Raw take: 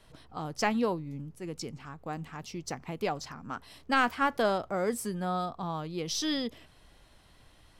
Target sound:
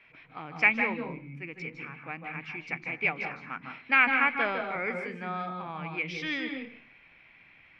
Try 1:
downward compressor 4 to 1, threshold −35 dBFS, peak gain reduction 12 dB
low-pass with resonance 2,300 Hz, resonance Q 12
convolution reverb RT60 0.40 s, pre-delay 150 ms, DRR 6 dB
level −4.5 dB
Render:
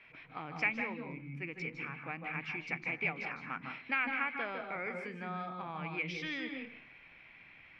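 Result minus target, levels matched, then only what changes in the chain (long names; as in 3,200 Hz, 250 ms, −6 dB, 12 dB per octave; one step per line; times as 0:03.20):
downward compressor: peak gain reduction +12 dB
remove: downward compressor 4 to 1, threshold −35 dBFS, peak gain reduction 12 dB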